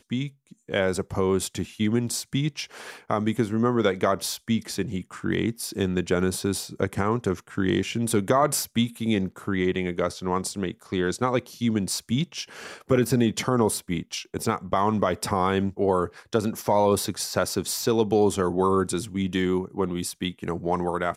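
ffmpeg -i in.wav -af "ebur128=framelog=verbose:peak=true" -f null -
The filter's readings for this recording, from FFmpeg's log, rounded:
Integrated loudness:
  I:         -25.6 LUFS
  Threshold: -35.7 LUFS
Loudness range:
  LRA:         2.9 LU
  Threshold: -45.5 LUFS
  LRA low:   -26.9 LUFS
  LRA high:  -24.0 LUFS
True peak:
  Peak:       -8.7 dBFS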